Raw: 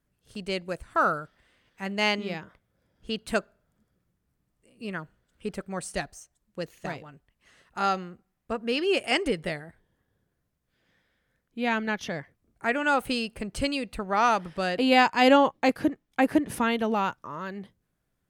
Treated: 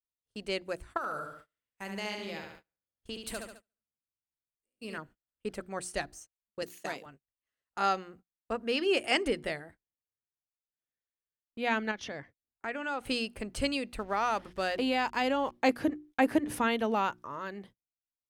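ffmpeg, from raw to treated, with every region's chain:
ffmpeg -i in.wav -filter_complex "[0:a]asettb=1/sr,asplit=3[link_01][link_02][link_03];[link_01]atrim=end=0.974[link_04];[link_02]atrim=start=0.97:end=4.98,asetpts=PTS-STARTPTS,afade=type=in:duration=0.004:curve=qsin,afade=type=out:start_time=4.006:duration=0.004:curve=qsin,highshelf=frequency=6900:gain=11,acompressor=threshold=-32dB:ratio=5:attack=3.2:release=140:knee=1:detection=peak,aecho=1:1:71|142|213|284|355|426:0.562|0.281|0.141|0.0703|0.0351|0.0176,atrim=end_sample=176841[link_05];[link_03]atrim=start=4.976[link_06];[link_04][link_05]acrossfade=duration=0.004:curve1=hsin:curve2=qsin[link_07];[link_07][link_06]acrossfade=duration=0.004:curve1=qsin:curve2=hsin,asettb=1/sr,asplit=3[link_08][link_09][link_10];[link_08]atrim=end=6.624[link_11];[link_09]atrim=start=6.62:end=7.06,asetpts=PTS-STARTPTS,afade=type=in:duration=0.004:curve=qsin,afade=type=out:start_time=0.436:duration=0.004:curve=qsin,highpass=frequency=180:width=0.5412,highpass=frequency=180:width=1.3066,highshelf=frequency=4800:gain=11.5[link_12];[link_10]atrim=start=7.056[link_13];[link_11][link_12]acrossfade=duration=0.004:curve1=hsin:curve2=qsin[link_14];[link_14][link_13]acrossfade=duration=0.004:curve1=qsin:curve2=hsin,asettb=1/sr,asplit=3[link_15][link_16][link_17];[link_15]atrim=end=11.914[link_18];[link_16]atrim=start=11.91:end=13.06,asetpts=PTS-STARTPTS,afade=type=in:duration=0.004:curve=qsin,afade=type=out:start_time=1.146:duration=0.004:curve=qsin,lowpass=7300,acompressor=threshold=-34dB:ratio=2:attack=3.2:release=140:knee=1:detection=peak[link_19];[link_17]atrim=start=13.056[link_20];[link_18][link_19]acrossfade=duration=0.004:curve1=hsin:curve2=qsin[link_21];[link_21][link_20]acrossfade=duration=0.004:curve1=qsin:curve2=hsin,asettb=1/sr,asplit=3[link_22][link_23][link_24];[link_22]atrim=end=13.984[link_25];[link_23]atrim=start=13.98:end=15.52,asetpts=PTS-STARTPTS,afade=type=in:duration=0.004:curve=qsin,afade=type=out:start_time=1.536:duration=0.004:curve=qsin,aeval=exprs='sgn(val(0))*max(abs(val(0))-0.00282,0)':channel_layout=same,acompressor=threshold=-22dB:ratio=5:attack=3.2:release=140:knee=1:detection=peak,aeval=exprs='val(0)+0.00158*(sin(2*PI*50*n/s)+sin(2*PI*2*50*n/s)/2+sin(2*PI*3*50*n/s)/3+sin(2*PI*4*50*n/s)/4+sin(2*PI*5*50*n/s)/5)':channel_layout=same[link_26];[link_24]atrim=start=15.516[link_27];[link_25][link_26]acrossfade=duration=0.004:curve1=hsin:curve2=qsin[link_28];[link_28][link_27]acrossfade=duration=0.004:curve1=qsin:curve2=hsin,bandreject=frequency=60:width_type=h:width=6,bandreject=frequency=120:width_type=h:width=6,bandreject=frequency=180:width_type=h:width=6,bandreject=frequency=240:width_type=h:width=6,bandreject=frequency=300:width_type=h:width=6,bandreject=frequency=360:width_type=h:width=6,agate=range=-30dB:threshold=-48dB:ratio=16:detection=peak,equalizer=frequency=170:width=3.9:gain=-9,volume=-2.5dB" out.wav

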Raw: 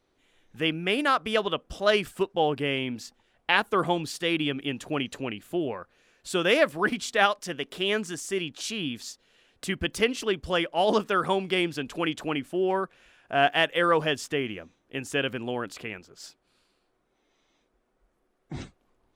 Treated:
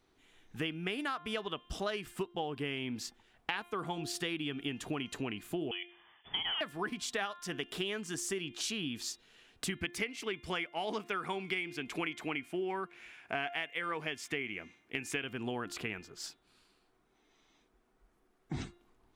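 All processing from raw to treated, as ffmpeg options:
ffmpeg -i in.wav -filter_complex "[0:a]asettb=1/sr,asplit=3[link_01][link_02][link_03];[link_01]atrim=end=5.714[link_04];[link_02]atrim=start=5.71:end=6.61,asetpts=PTS-STARTPTS,afade=type=in:duration=0.004:curve=qsin,afade=type=out:start_time=0.896:duration=0.004:curve=qsin,deesser=0.65,volume=21.5dB,asoftclip=hard,volume=-21.5dB,lowpass=frequency=3000:width_type=q:width=0.5098,lowpass=frequency=3000:width_type=q:width=0.6013,lowpass=frequency=3000:width_type=q:width=0.9,lowpass=frequency=3000:width_type=q:width=2.563,afreqshift=-3500[link_05];[link_03]atrim=start=6.606[link_06];[link_04][link_05]acrossfade=duration=0.004:curve1=hsin:curve2=qsin[link_07];[link_07][link_06]acrossfade=duration=0.004:curve1=qsin:curve2=hsin,asettb=1/sr,asplit=3[link_08][link_09][link_10];[link_08]atrim=end=9.814[link_11];[link_09]atrim=start=9.81:end=15.24,asetpts=PTS-STARTPTS,afade=type=in:duration=0.004:curve=qsin,afade=type=out:start_time=5.426:duration=0.004:curve=qsin,highpass=frequency=130:poles=1,equalizer=frequency=2200:width_type=o:width=0.31:gain=12.5[link_12];[link_10]atrim=start=15.236[link_13];[link_11][link_12]acrossfade=duration=0.004:curve1=hsin:curve2=qsin[link_14];[link_14][link_13]acrossfade=duration=0.004:curve1=qsin:curve2=hsin,equalizer=frequency=550:width_type=o:width=0.22:gain=-12,bandreject=frequency=349.5:width_type=h:width=4,bandreject=frequency=699:width_type=h:width=4,bandreject=frequency=1048.5:width_type=h:width=4,bandreject=frequency=1398:width_type=h:width=4,bandreject=frequency=1747.5:width_type=h:width=4,bandreject=frequency=2097:width_type=h:width=4,bandreject=frequency=2446.5:width_type=h:width=4,bandreject=frequency=2796:width_type=h:width=4,bandreject=frequency=3145.5:width_type=h:width=4,bandreject=frequency=3495:width_type=h:width=4,bandreject=frequency=3844.5:width_type=h:width=4,acompressor=threshold=-34dB:ratio=10,volume=1dB" out.wav

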